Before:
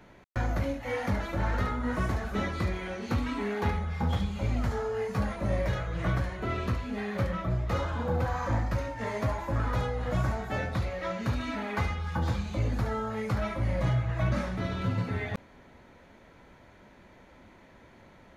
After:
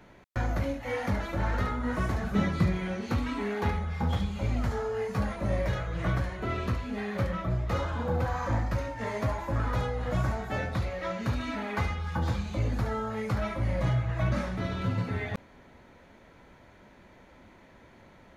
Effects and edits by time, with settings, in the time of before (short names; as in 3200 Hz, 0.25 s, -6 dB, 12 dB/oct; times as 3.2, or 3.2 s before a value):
2.18–3.01 bell 160 Hz +12 dB